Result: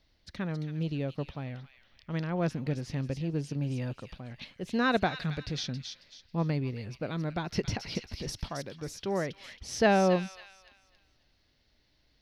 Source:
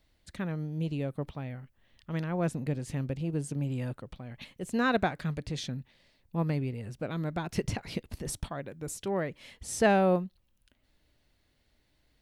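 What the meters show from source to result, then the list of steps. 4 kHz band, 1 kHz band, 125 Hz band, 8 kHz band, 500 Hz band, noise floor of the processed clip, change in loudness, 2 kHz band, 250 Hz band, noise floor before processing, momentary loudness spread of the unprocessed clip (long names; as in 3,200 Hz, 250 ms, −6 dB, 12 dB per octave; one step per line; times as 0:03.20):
+4.5 dB, 0.0 dB, 0.0 dB, −2.5 dB, 0.0 dB, −69 dBFS, 0.0 dB, +1.0 dB, 0.0 dB, −72 dBFS, 14 LU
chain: high shelf with overshoot 6,600 Hz −7.5 dB, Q 3
delay with a high-pass on its return 272 ms, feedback 32%, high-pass 2,400 Hz, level −5 dB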